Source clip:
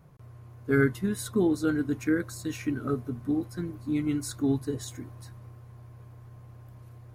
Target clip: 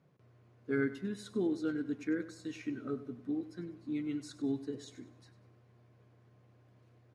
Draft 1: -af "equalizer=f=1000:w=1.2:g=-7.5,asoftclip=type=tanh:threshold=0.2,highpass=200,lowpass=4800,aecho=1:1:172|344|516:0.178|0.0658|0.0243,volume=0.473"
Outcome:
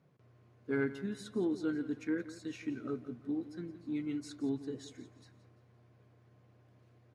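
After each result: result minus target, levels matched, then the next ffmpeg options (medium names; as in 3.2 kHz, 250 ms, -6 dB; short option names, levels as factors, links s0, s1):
echo 74 ms late; saturation: distortion +12 dB
-af "equalizer=f=1000:w=1.2:g=-7.5,asoftclip=type=tanh:threshold=0.2,highpass=200,lowpass=4800,aecho=1:1:98|196|294:0.178|0.0658|0.0243,volume=0.473"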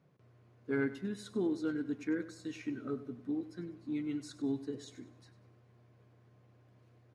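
saturation: distortion +12 dB
-af "equalizer=f=1000:w=1.2:g=-7.5,asoftclip=type=tanh:threshold=0.447,highpass=200,lowpass=4800,aecho=1:1:98|196|294:0.178|0.0658|0.0243,volume=0.473"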